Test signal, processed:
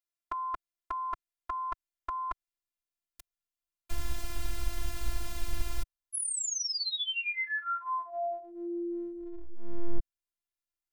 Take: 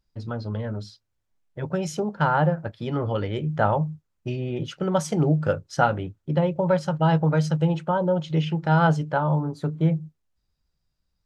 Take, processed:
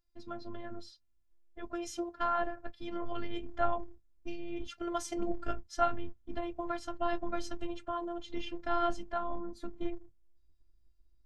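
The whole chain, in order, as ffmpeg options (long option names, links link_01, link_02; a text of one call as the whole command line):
ffmpeg -i in.wav -af "asubboost=boost=9:cutoff=110,afftfilt=real='hypot(re,im)*cos(PI*b)':imag='0':win_size=512:overlap=0.75,volume=-4.5dB" out.wav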